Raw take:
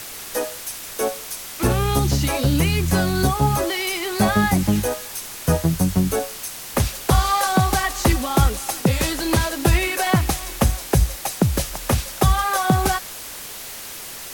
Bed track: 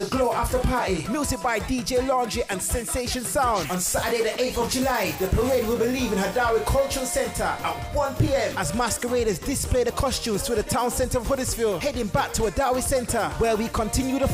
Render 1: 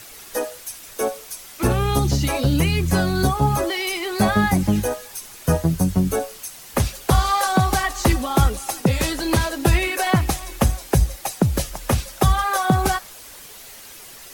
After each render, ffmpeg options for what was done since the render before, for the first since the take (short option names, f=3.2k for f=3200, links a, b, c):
-af "afftdn=nr=8:nf=-35"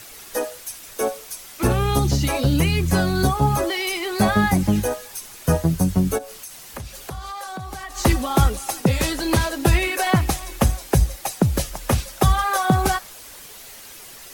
-filter_complex "[0:a]asplit=3[a][b][c];[a]afade=t=out:st=6.17:d=0.02[d];[b]acompressor=threshold=-32dB:ratio=4:attack=3.2:release=140:knee=1:detection=peak,afade=t=in:st=6.17:d=0.02,afade=t=out:st=7.96:d=0.02[e];[c]afade=t=in:st=7.96:d=0.02[f];[d][e][f]amix=inputs=3:normalize=0"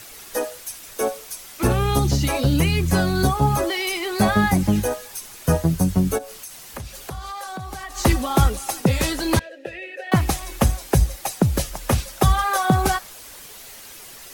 -filter_complex "[0:a]asettb=1/sr,asplit=3[a][b][c];[a]atrim=end=9.394[d];[b]atrim=start=9.39:end=10.12,asetpts=PTS-STARTPTS,afade=t=in:d=0.004:c=qsin,afade=t=out:st=0.726:d=0.004:c=qsin,asplit=3[e][f][g];[e]bandpass=f=530:t=q:w=8,volume=0dB[h];[f]bandpass=f=1.84k:t=q:w=8,volume=-6dB[i];[g]bandpass=f=2.48k:t=q:w=8,volume=-9dB[j];[h][i][j]amix=inputs=3:normalize=0[k];[c]atrim=start=10.116[l];[d][k]acrossfade=d=0.004:c1=hsin:c2=qsin[m];[m][l]acrossfade=d=0.004:c1=qsin:c2=hsin"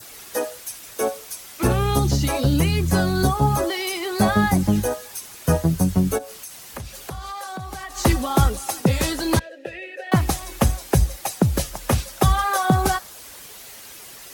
-af "highpass=42,adynamicequalizer=threshold=0.00794:dfrequency=2400:dqfactor=1.9:tfrequency=2400:tqfactor=1.9:attack=5:release=100:ratio=0.375:range=2:mode=cutabove:tftype=bell"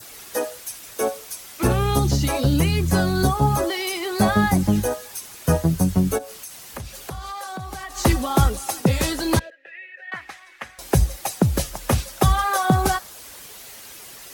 -filter_complex "[0:a]asettb=1/sr,asplit=3[a][b][c];[a]atrim=end=9.504[d];[b]atrim=start=9.5:end=10.79,asetpts=PTS-STARTPTS,afade=t=in:d=0.004:c=qsin,afade=t=out:st=1.286:d=0.004:c=qsin,bandpass=f=1.9k:t=q:w=2.8[e];[c]atrim=start=10.786[f];[d][e]acrossfade=d=0.004:c1=hsin:c2=qsin[g];[g][f]acrossfade=d=0.004:c1=qsin:c2=hsin"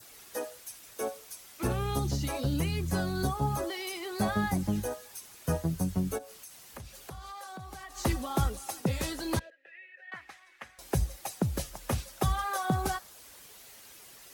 -af "volume=-11dB"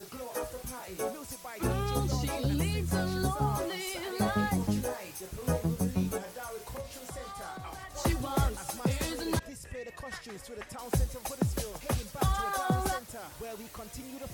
-filter_complex "[1:a]volume=-20dB[a];[0:a][a]amix=inputs=2:normalize=0"